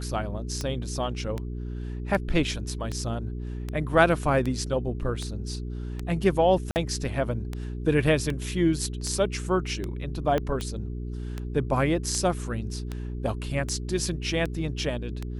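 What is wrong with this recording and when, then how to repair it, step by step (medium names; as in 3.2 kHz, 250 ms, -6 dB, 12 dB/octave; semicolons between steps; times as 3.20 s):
hum 60 Hz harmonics 7 -33 dBFS
tick 78 rpm -18 dBFS
6.71–6.76 s: dropout 49 ms
10.38 s: pop -15 dBFS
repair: de-click; de-hum 60 Hz, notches 7; interpolate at 6.71 s, 49 ms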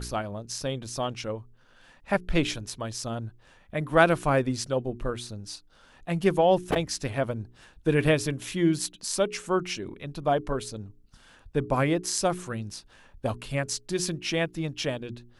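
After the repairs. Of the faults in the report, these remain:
10.38 s: pop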